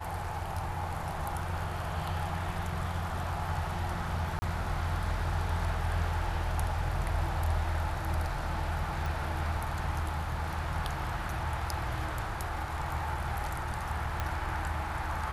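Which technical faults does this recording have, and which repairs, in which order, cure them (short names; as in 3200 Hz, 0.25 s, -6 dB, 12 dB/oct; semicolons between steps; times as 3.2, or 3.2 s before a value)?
4.39–4.42 gap 30 ms
9.06 pop
14.2 pop -18 dBFS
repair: de-click; interpolate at 4.39, 30 ms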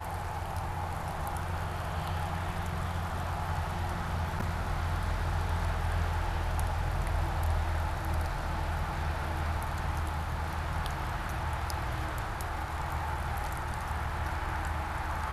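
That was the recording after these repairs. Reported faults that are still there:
none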